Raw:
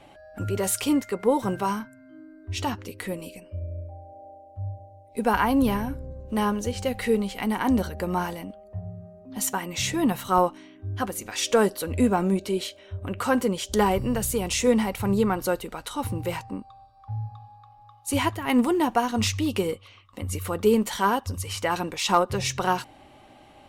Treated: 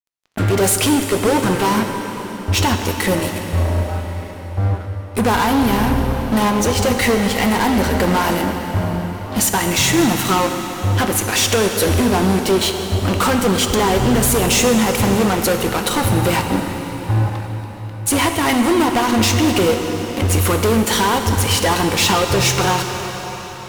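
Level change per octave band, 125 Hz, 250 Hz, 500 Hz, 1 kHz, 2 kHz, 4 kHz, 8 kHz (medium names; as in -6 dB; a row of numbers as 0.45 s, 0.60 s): +13.0 dB, +8.0 dB, +8.0 dB, +8.0 dB, +11.5 dB, +13.0 dB, +12.5 dB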